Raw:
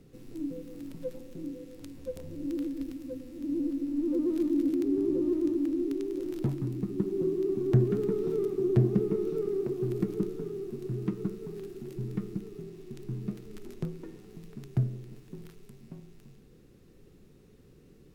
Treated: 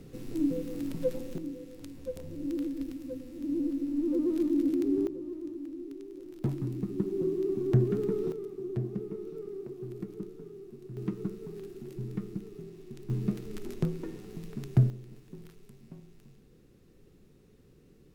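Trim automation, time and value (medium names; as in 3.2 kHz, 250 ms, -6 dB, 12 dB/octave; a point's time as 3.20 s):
+7 dB
from 1.38 s 0 dB
from 5.07 s -11 dB
from 6.44 s -1 dB
from 8.32 s -9.5 dB
from 10.97 s -2 dB
from 13.10 s +5 dB
from 14.90 s -2.5 dB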